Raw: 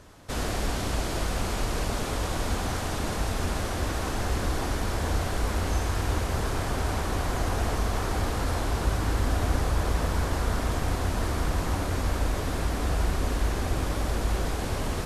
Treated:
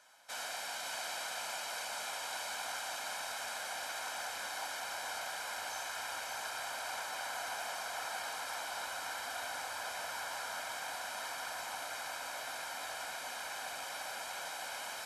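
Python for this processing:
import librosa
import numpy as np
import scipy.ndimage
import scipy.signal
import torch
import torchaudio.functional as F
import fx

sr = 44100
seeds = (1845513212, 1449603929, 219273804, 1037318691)

y = scipy.signal.sosfilt(scipy.signal.butter(2, 930.0, 'highpass', fs=sr, output='sos'), x)
y = y + 0.64 * np.pad(y, (int(1.3 * sr / 1000.0), 0))[:len(y)]
y = y + 10.0 ** (-6.0 / 20.0) * np.pad(y, (int(551 * sr / 1000.0), 0))[:len(y)]
y = F.gain(torch.from_numpy(y), -7.0).numpy()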